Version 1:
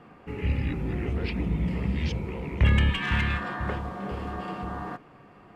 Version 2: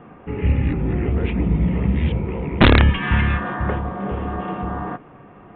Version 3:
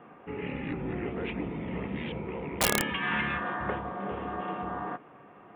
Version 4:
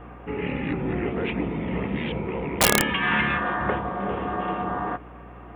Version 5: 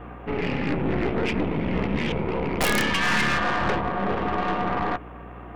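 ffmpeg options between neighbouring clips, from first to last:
-af "lowpass=f=1.5k:p=1,aresample=8000,aeval=exprs='(mod(4.73*val(0)+1,2)-1)/4.73':c=same,aresample=44100,volume=8.5dB"
-af "afftfilt=real='re*lt(hypot(re,im),1.12)':imag='im*lt(hypot(re,im),1.12)':win_size=1024:overlap=0.75,highpass=f=370:p=1,aeval=exprs='(mod(2.51*val(0)+1,2)-1)/2.51':c=same,volume=-5dB"
-af "aeval=exprs='val(0)+0.00282*(sin(2*PI*60*n/s)+sin(2*PI*2*60*n/s)/2+sin(2*PI*3*60*n/s)/3+sin(2*PI*4*60*n/s)/4+sin(2*PI*5*60*n/s)/5)':c=same,volume=7dB"
-af "aeval=exprs='(tanh(20*val(0)+0.75)-tanh(0.75))/20':c=same,volume=7dB"

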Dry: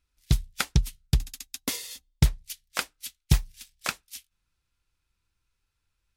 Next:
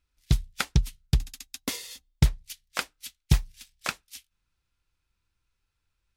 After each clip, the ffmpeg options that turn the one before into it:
-af "equalizer=f=14k:t=o:w=1.5:g=-4.5"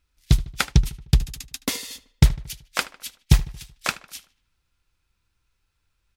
-filter_complex "[0:a]asplit=2[a][b];[b]adelay=76,lowpass=f=4k:p=1,volume=-18dB,asplit=2[c][d];[d]adelay=76,lowpass=f=4k:p=1,volume=0.55,asplit=2[e][f];[f]adelay=76,lowpass=f=4k:p=1,volume=0.55,asplit=2[g][h];[h]adelay=76,lowpass=f=4k:p=1,volume=0.55,asplit=2[i][j];[j]adelay=76,lowpass=f=4k:p=1,volume=0.55[k];[a][c][e][g][i][k]amix=inputs=6:normalize=0,volume=5.5dB"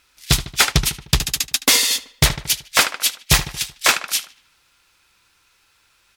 -filter_complex "[0:a]asplit=2[a][b];[b]highpass=f=720:p=1,volume=27dB,asoftclip=type=tanh:threshold=-1.5dB[c];[a][c]amix=inputs=2:normalize=0,lowpass=f=3.5k:p=1,volume=-6dB,aemphasis=mode=production:type=cd,volume=-1.5dB"

